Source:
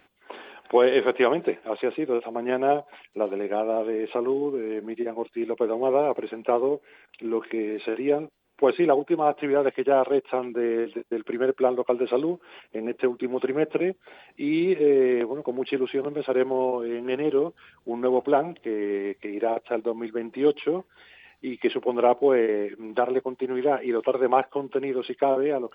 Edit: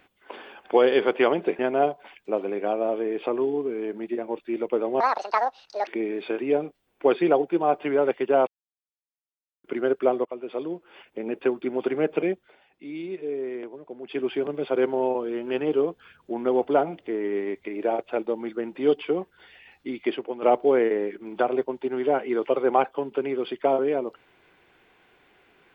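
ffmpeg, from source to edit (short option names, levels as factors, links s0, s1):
-filter_complex "[0:a]asplit=10[s0][s1][s2][s3][s4][s5][s6][s7][s8][s9];[s0]atrim=end=1.592[s10];[s1]atrim=start=2.468:end=5.884[s11];[s2]atrim=start=5.88:end=7.45,asetpts=PTS-STARTPTS,asetrate=79380,aresample=44100[s12];[s3]atrim=start=7.446:end=10.05,asetpts=PTS-STARTPTS,afade=t=out:st=2.6:d=0.004:c=hsin[s13];[s4]atrim=start=10.05:end=11.22,asetpts=PTS-STARTPTS,volume=0[s14];[s5]atrim=start=11.22:end=11.83,asetpts=PTS-STARTPTS,afade=t=in:d=0.004:c=hsin,afade=t=out:st=0.606:d=0.004:c=hsin:silence=0.199526[s15];[s6]atrim=start=11.83:end=14.14,asetpts=PTS-STARTPTS,afade=t=in:d=1.11:silence=0.199526,afade=t=out:st=2.06:d=0.25:silence=0.281838[s16];[s7]atrim=start=14.14:end=15.61,asetpts=PTS-STARTPTS,volume=0.282[s17];[s8]atrim=start=15.61:end=22,asetpts=PTS-STARTPTS,afade=t=in:d=0.25:silence=0.281838,afade=t=out:st=5.92:d=0.47:silence=0.281838[s18];[s9]atrim=start=22,asetpts=PTS-STARTPTS,afade=t=in:d=0.004:c=hsin:silence=0.281838[s19];[s10][s11]acrossfade=d=0.004:c1=hsin:c2=hsin[s20];[s20][s12]acrossfade=d=0.004:c1=hsin:c2=hsin[s21];[s13][s14][s15][s16][s17][s18][s19]concat=n=7:v=0:a=1[s22];[s21][s22]acrossfade=d=0.004:c1=hsin:c2=hsin"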